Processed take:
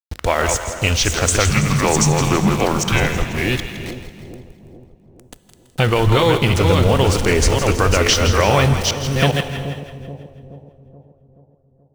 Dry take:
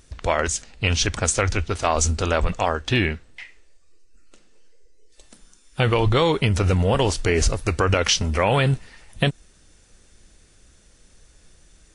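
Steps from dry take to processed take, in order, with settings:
delay that plays each chunk backwards 405 ms, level −4 dB
in parallel at +2.5 dB: downward compressor, threshold −30 dBFS, peak gain reduction 16 dB
on the sum: centre clipping without the shift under −27 dBFS
reverb whose tail is shaped and stops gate 440 ms flat, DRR 12 dB
0:01.50–0:03.14: frequency shifter −230 Hz
echo with a time of its own for lows and highs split 680 Hz, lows 428 ms, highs 165 ms, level −11 dB
level +1 dB

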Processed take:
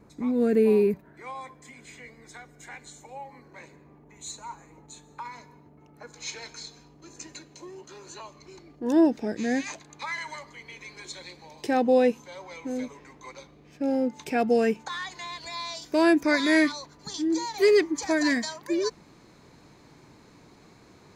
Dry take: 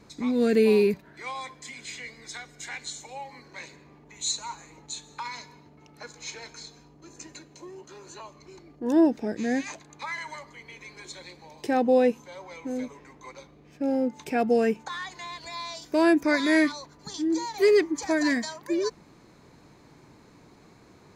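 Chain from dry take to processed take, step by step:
parametric band 4,400 Hz −13.5 dB 2.1 octaves, from 0:06.13 +2.5 dB

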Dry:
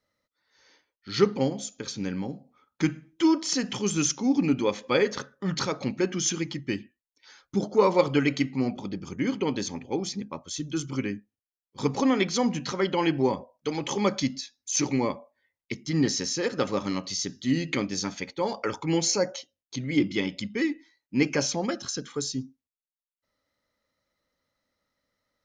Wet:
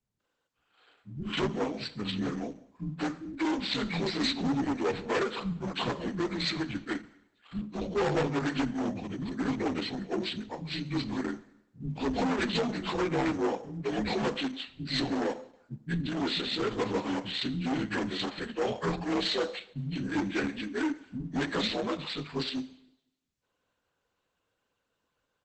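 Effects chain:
partials spread apart or drawn together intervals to 87%
in parallel at −7.5 dB: sample-rate reduction 6,100 Hz, jitter 0%
on the sum: gain into a clipping stage and back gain 24 dB
multiband delay without the direct sound lows, highs 200 ms, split 220 Hz
on a send at −16 dB: convolution reverb RT60 0.85 s, pre-delay 13 ms
on the sum: Opus 10 kbit/s 48,000 Hz

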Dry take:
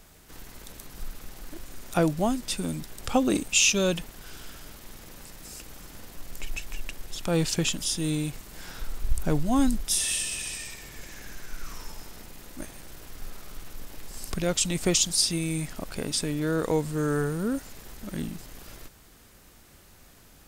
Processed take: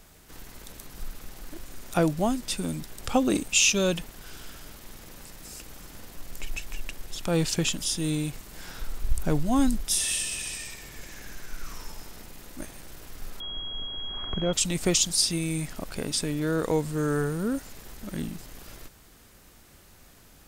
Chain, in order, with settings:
0:13.40–0:14.53: switching amplifier with a slow clock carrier 3,300 Hz

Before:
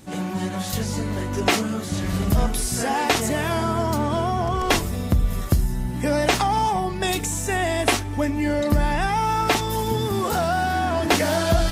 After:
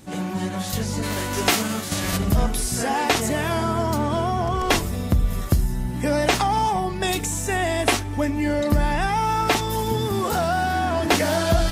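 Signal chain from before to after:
0:01.02–0:02.16: spectral envelope flattened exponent 0.6

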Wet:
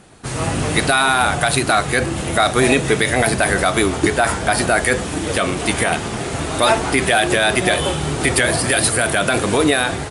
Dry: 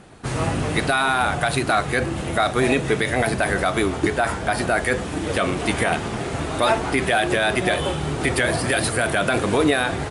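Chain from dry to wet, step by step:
high-shelf EQ 4,600 Hz +8.5 dB
automatic gain control
level −1 dB

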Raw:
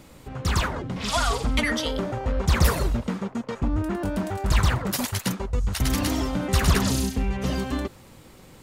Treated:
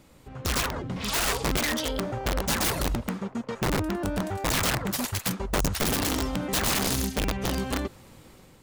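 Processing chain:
automatic gain control gain up to 5.5 dB
wrap-around overflow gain 13 dB
level −7 dB

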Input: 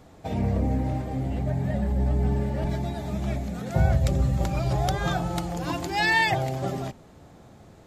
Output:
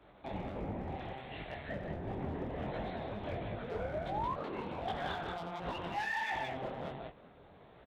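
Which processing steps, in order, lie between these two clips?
low-shelf EQ 210 Hz −10.5 dB
flanger 1.9 Hz, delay 9.6 ms, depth 8.8 ms, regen +64%
linear-prediction vocoder at 8 kHz pitch kept
0:00.95–0:01.69: tilt shelving filter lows −10 dB, about 1,200 Hz
loudspeakers that aren't time-aligned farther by 30 metres −11 dB, 61 metres −5 dB
0:03.71–0:04.34: sound drawn into the spectrogram rise 420–1,100 Hz −33 dBFS
downward compressor 10 to 1, threshold −32 dBFS, peak gain reduction 11.5 dB
gain into a clipping stage and back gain 30.5 dB
0:04.34–0:04.80: ring modulation 660 Hz → 120 Hz
high-pass filter 88 Hz 6 dB per octave
micro pitch shift up and down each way 49 cents
level +4 dB

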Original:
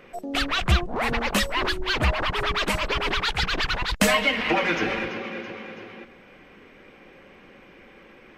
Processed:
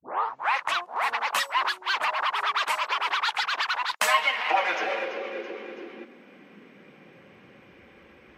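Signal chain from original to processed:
turntable start at the beginning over 0.77 s
high-pass filter sweep 960 Hz → 63 Hz, 0:04.26–0:08.22
level −3.5 dB

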